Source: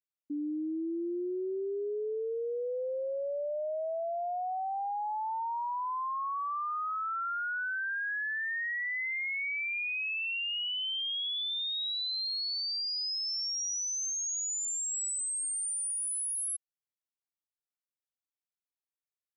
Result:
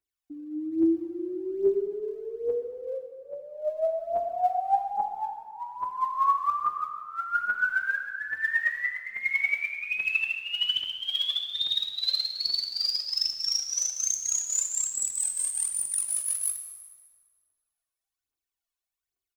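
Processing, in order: comb 2.7 ms, depth 87%; phaser 1.2 Hz, delay 2 ms, feedback 77%; plate-style reverb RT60 1.9 s, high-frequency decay 0.75×, DRR 5 dB; gain -2.5 dB

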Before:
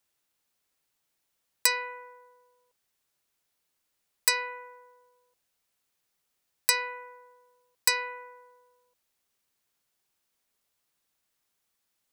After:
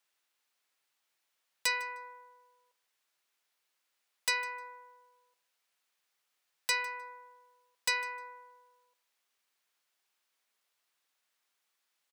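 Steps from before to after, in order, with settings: HPF 1300 Hz 6 dB/oct; in parallel at -2 dB: compressor, threshold -38 dBFS, peak gain reduction 18.5 dB; on the sum: overloaded stage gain 17.5 dB; high shelf 4900 Hz -10.5 dB; feedback echo 0.153 s, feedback 17%, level -20 dB

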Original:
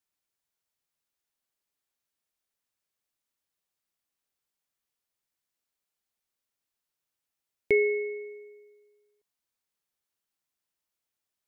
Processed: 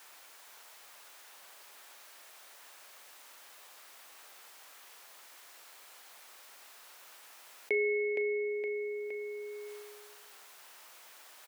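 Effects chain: HPF 700 Hz 12 dB/oct; high shelf 2400 Hz -10.5 dB; doubler 39 ms -14 dB; feedback echo 0.466 s, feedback 22%, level -10 dB; fast leveller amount 70%

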